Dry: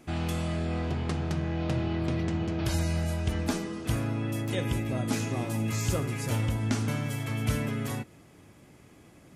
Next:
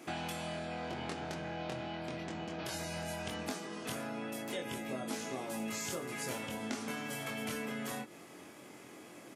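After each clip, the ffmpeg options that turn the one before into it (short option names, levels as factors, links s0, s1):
-filter_complex "[0:a]highpass=290,acompressor=threshold=0.00794:ratio=6,asplit=2[s0][s1];[s1]adelay=23,volume=0.668[s2];[s0][s2]amix=inputs=2:normalize=0,volume=1.58"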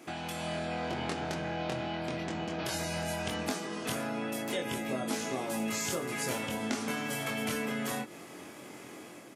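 -af "dynaudnorm=f=110:g=7:m=1.88"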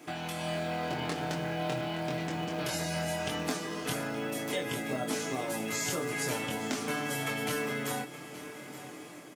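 -filter_complex "[0:a]aecho=1:1:6.7:0.48,acrossover=split=750|6400[s0][s1][s2];[s0]acrusher=bits=5:mode=log:mix=0:aa=0.000001[s3];[s3][s1][s2]amix=inputs=3:normalize=0,aecho=1:1:870:0.168"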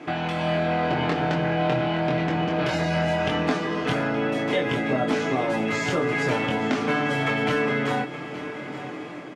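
-filter_complex "[0:a]lowpass=2800,asplit=2[s0][s1];[s1]asoftclip=type=tanh:threshold=0.0158,volume=0.316[s2];[s0][s2]amix=inputs=2:normalize=0,volume=2.82"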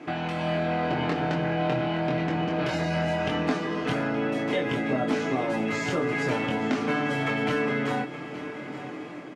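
-af "equalizer=f=260:t=o:w=0.93:g=2.5,bandreject=f=3400:w=27,volume=0.668"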